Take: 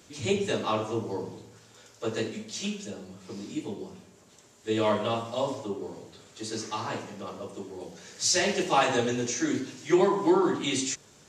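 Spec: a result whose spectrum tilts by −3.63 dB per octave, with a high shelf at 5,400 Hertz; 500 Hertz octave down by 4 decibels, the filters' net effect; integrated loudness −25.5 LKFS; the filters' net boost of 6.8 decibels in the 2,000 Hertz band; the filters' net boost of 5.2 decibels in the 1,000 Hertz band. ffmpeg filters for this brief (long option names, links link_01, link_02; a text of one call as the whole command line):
ffmpeg -i in.wav -af "equalizer=frequency=500:width_type=o:gain=-8,equalizer=frequency=1000:width_type=o:gain=7,equalizer=frequency=2000:width_type=o:gain=8,highshelf=frequency=5400:gain=-9,volume=2dB" out.wav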